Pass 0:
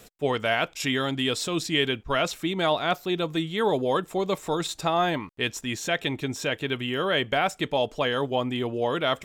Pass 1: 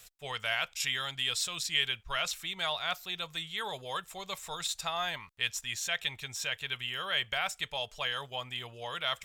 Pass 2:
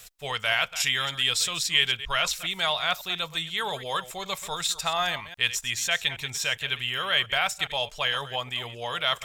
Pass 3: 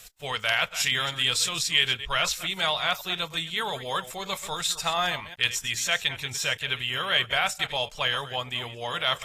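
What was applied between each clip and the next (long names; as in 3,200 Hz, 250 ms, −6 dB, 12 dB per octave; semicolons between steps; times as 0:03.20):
guitar amp tone stack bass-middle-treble 10-0-10
delay that plays each chunk backwards 137 ms, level −13.5 dB; level +7 dB
AAC 48 kbit/s 32,000 Hz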